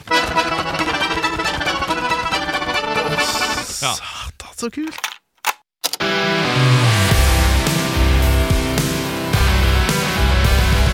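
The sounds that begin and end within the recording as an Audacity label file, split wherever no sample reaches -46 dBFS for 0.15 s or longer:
5.380000	5.590000	sound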